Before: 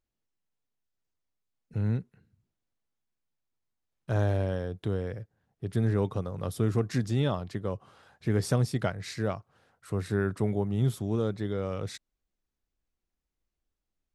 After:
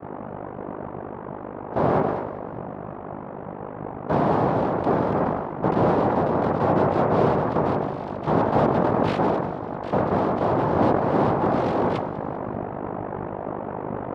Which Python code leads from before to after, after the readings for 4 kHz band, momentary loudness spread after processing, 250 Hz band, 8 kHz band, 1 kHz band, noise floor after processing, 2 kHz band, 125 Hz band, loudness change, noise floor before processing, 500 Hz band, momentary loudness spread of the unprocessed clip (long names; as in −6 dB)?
+1.0 dB, 15 LU, +9.0 dB, below −10 dB, +20.0 dB, −35 dBFS, +8.0 dB, +1.5 dB, +7.5 dB, below −85 dBFS, +11.5 dB, 11 LU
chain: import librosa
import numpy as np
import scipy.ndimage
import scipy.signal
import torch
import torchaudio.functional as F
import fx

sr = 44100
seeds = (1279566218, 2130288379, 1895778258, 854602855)

p1 = fx.add_hum(x, sr, base_hz=50, snr_db=15)
p2 = fx.low_shelf(p1, sr, hz=410.0, db=11.5)
p3 = p2 + 0.85 * np.pad(p2, (int(1.4 * sr / 1000.0), 0))[:len(p2)]
p4 = fx.rider(p3, sr, range_db=10, speed_s=2.0)
p5 = p3 + (p4 * librosa.db_to_amplitude(0.5))
p6 = fx.env_lowpass_down(p5, sr, base_hz=380.0, full_db=-6.0)
p7 = fx.tube_stage(p6, sr, drive_db=19.0, bias=0.7)
p8 = np.clip(p7, -10.0 ** (-21.5 / 20.0), 10.0 ** (-21.5 / 20.0))
p9 = fx.noise_vocoder(p8, sr, seeds[0], bands=2)
p10 = fx.air_absorb(p9, sr, metres=400.0)
p11 = fx.echo_split(p10, sr, split_hz=310.0, low_ms=698, high_ms=197, feedback_pct=52, wet_db=-15.0)
p12 = fx.sustainer(p11, sr, db_per_s=41.0)
y = p12 * librosa.db_to_amplitude(4.5)